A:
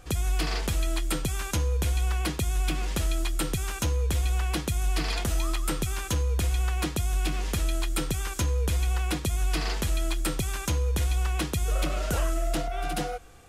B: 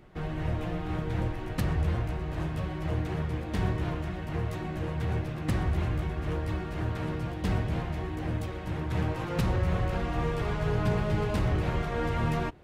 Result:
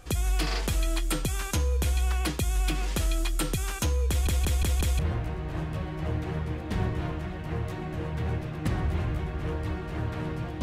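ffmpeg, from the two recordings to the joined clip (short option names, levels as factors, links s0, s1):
-filter_complex "[0:a]apad=whole_dur=10.62,atrim=end=10.62,asplit=5[s0][s1][s2][s3][s4];[s0]atrim=end=4.272[s5];[s1]atrim=start=4.088:end=4.272[s6];[s2]atrim=start=4.088:end=4.272[s7];[s3]atrim=start=4.088:end=4.272[s8];[s4]atrim=start=4.088:end=4.272[s9];[1:a]atrim=start=1.818:end=7.45[s10];[s5][s6]acrossfade=d=0.004:c1=hsin:c2=hsin[s11];[s11][s7]acrossfade=d=0.004:c1=hsin:c2=hsin[s12];[s12][s8]acrossfade=d=0.004:c1=hsin:c2=hsin[s13];[s13][s9]acrossfade=d=0.004:c1=hsin:c2=hsin[s14];[s14][s10]acrossfade=d=0.004:c1=hsin:c2=hsin"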